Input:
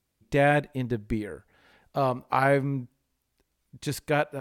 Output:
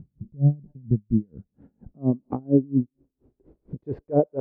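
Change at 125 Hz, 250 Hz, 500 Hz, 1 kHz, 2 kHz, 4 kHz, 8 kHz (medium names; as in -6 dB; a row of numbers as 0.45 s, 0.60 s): +6.0 dB, +7.0 dB, -1.5 dB, -11.5 dB, under -35 dB, under -40 dB, no reading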